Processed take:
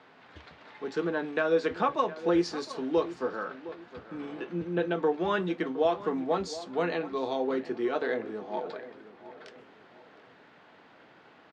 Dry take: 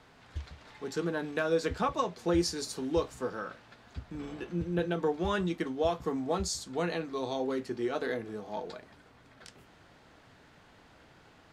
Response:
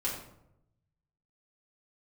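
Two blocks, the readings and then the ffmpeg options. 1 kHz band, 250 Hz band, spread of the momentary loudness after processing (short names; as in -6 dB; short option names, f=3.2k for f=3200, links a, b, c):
+3.5 dB, +2.0 dB, 16 LU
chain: -filter_complex "[0:a]highpass=230,lowpass=3.3k,asplit=2[a][b];[b]adelay=713,lowpass=f=1.9k:p=1,volume=-14.5dB,asplit=2[c][d];[d]adelay=713,lowpass=f=1.9k:p=1,volume=0.34,asplit=2[e][f];[f]adelay=713,lowpass=f=1.9k:p=1,volume=0.34[g];[a][c][e][g]amix=inputs=4:normalize=0,volume=3.5dB"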